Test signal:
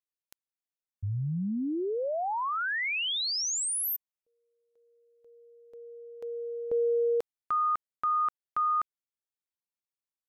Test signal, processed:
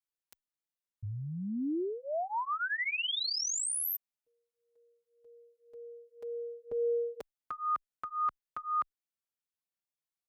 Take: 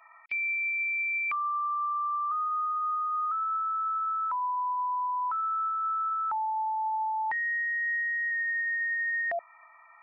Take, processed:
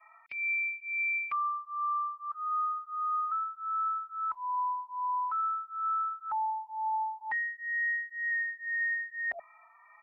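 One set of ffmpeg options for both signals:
-filter_complex "[0:a]adynamicequalizer=threshold=0.00501:dfrequency=440:dqfactor=1.9:tfrequency=440:tqfactor=1.9:attack=5:release=100:ratio=0.375:range=2:mode=cutabove:tftype=bell,asplit=2[s0][s1];[s1]adelay=4.3,afreqshift=1.9[s2];[s0][s2]amix=inputs=2:normalize=1"

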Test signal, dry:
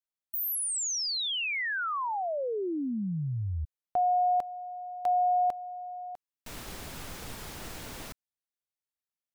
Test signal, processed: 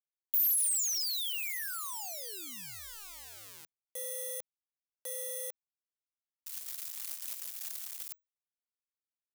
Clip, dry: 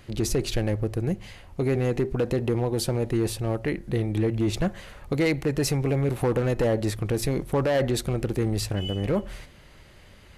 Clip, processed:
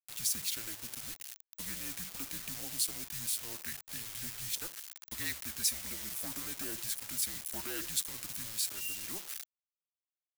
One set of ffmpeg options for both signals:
-af "acrusher=bits=5:mix=0:aa=0.000001,aderivative,afreqshift=-210"

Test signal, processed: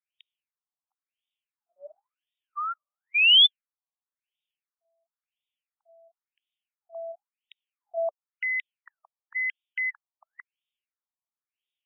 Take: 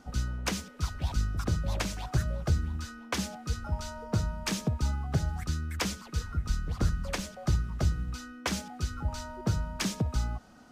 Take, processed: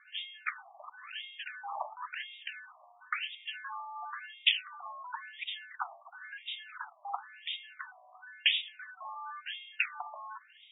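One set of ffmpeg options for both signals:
-af "highpass=f=300:t=q:w=0.5412,highpass=f=300:t=q:w=1.307,lowpass=f=3300:t=q:w=0.5176,lowpass=f=3300:t=q:w=0.7071,lowpass=f=3300:t=q:w=1.932,afreqshift=250,aexciter=amount=6:drive=8:freq=2800,afftfilt=real='re*between(b*sr/1024,830*pow(2700/830,0.5+0.5*sin(2*PI*0.96*pts/sr))/1.41,830*pow(2700/830,0.5+0.5*sin(2*PI*0.96*pts/sr))*1.41)':imag='im*between(b*sr/1024,830*pow(2700/830,0.5+0.5*sin(2*PI*0.96*pts/sr))/1.41,830*pow(2700/830,0.5+0.5*sin(2*PI*0.96*pts/sr))*1.41)':win_size=1024:overlap=0.75,volume=1.41"

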